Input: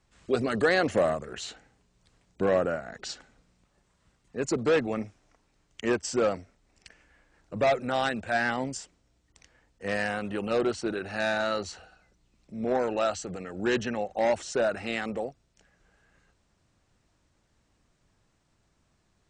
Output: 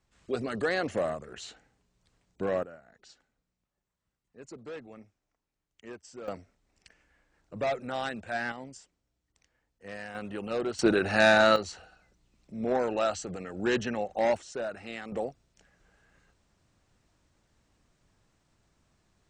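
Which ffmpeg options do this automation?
-af "asetnsamples=n=441:p=0,asendcmd='2.63 volume volume -18dB;6.28 volume volume -6dB;8.52 volume volume -12dB;10.15 volume volume -5dB;10.79 volume volume 7.5dB;11.56 volume volume -1dB;14.37 volume volume -8.5dB;15.12 volume volume 0dB',volume=-5.5dB"

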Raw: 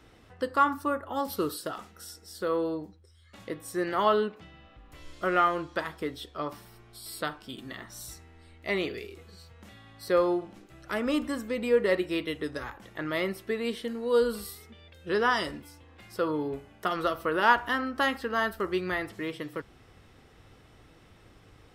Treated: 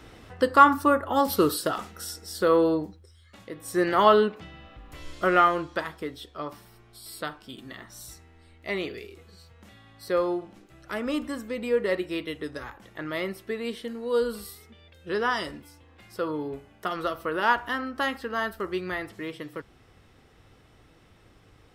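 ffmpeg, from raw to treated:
-af "volume=17.5dB,afade=t=out:st=2.76:d=0.75:silence=0.266073,afade=t=in:st=3.51:d=0.27:silence=0.334965,afade=t=out:st=5.09:d=0.98:silence=0.446684"

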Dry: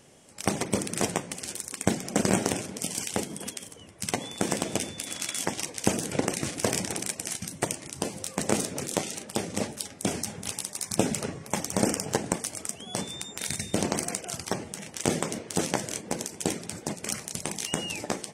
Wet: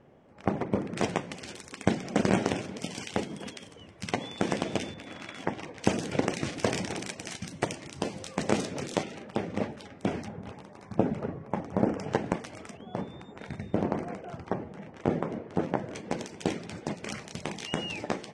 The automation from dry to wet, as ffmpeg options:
-af "asetnsamples=n=441:p=0,asendcmd='0.97 lowpass f 3800;4.94 lowpass f 1900;5.83 lowpass f 4400;9.03 lowpass f 2200;10.28 lowpass f 1200;11.99 lowpass f 2600;12.77 lowpass f 1300;15.95 lowpass f 3600',lowpass=1.4k"

